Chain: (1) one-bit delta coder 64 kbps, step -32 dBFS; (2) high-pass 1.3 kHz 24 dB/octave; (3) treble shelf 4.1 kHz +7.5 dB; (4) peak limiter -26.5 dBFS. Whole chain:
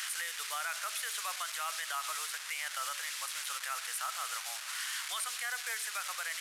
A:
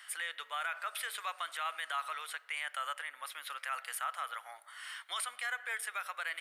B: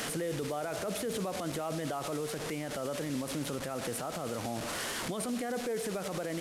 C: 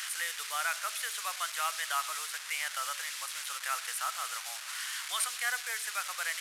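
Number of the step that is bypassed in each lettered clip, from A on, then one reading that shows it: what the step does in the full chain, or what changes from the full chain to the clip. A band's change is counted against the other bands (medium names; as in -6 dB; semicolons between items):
1, 8 kHz band -9.0 dB; 2, crest factor change -2.5 dB; 4, crest factor change +4.5 dB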